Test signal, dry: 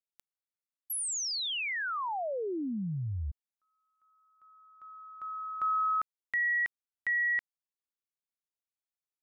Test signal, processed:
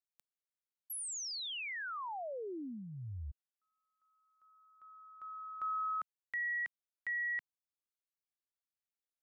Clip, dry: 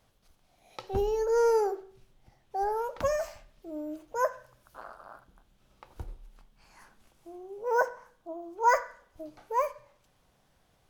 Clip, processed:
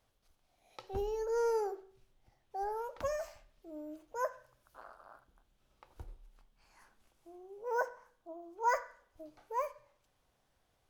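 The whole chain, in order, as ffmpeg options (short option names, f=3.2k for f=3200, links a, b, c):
-af "equalizer=f=170:w=1.7:g=-5.5,volume=-7.5dB"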